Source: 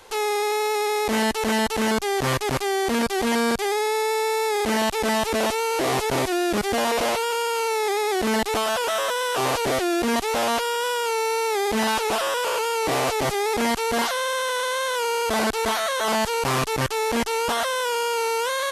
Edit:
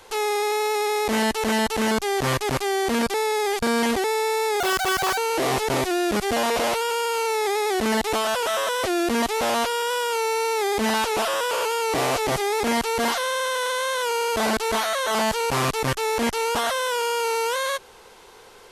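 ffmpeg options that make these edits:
-filter_complex "[0:a]asplit=6[a][b][c][d][e][f];[a]atrim=end=3.142[g];[b]atrim=start=3.138:end=4.042,asetpts=PTS-STARTPTS,areverse[h];[c]atrim=start=4.038:end=4.604[i];[d]atrim=start=4.6:end=5.59,asetpts=PTS-STARTPTS,asetrate=75852,aresample=44100,atrim=end_sample=25383,asetpts=PTS-STARTPTS[j];[e]atrim=start=5.586:end=9.252[k];[f]atrim=start=9.768[l];[g][h]acrossfade=d=0.004:c1=hsin:c2=hsin[m];[m][i]acrossfade=d=0.004:c1=hsin:c2=hsin[n];[n][j]acrossfade=d=0.004:c1=hsin:c2=hsin[o];[o][k]acrossfade=d=0.004:c1=hsin:c2=hsin[p];[p][l]acrossfade=d=0.004:c1=hsin:c2=hsin"

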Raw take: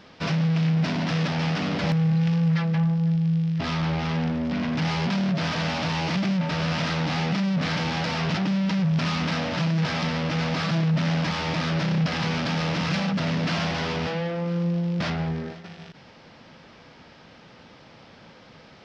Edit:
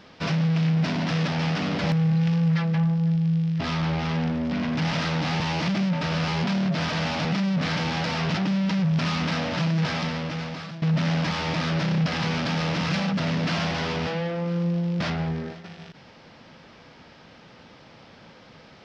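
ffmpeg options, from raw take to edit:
-filter_complex "[0:a]asplit=6[a][b][c][d][e][f];[a]atrim=end=4.912[g];[b]atrim=start=6.758:end=7.252[h];[c]atrim=start=5.878:end=6.762[i];[d]atrim=start=4.908:end=5.882[j];[e]atrim=start=7.248:end=10.82,asetpts=PTS-STARTPTS,afade=t=out:st=2.622:d=0.95:silence=0.141254[k];[f]atrim=start=10.82,asetpts=PTS-STARTPTS,afade=t=in:d=0.004:c=hsin:silence=0.141254[l];[g][h]acrossfade=d=0.004:c1=hsin:c2=hsin[m];[m][i]acrossfade=d=0.004:c1=hsin:c2=hsin[n];[n][j]acrossfade=d=0.004:c1=hsin:c2=hsin[o];[k][l]concat=n=2:v=0:a=1[p];[o][p]acrossfade=d=0.004:c1=hsin:c2=hsin"

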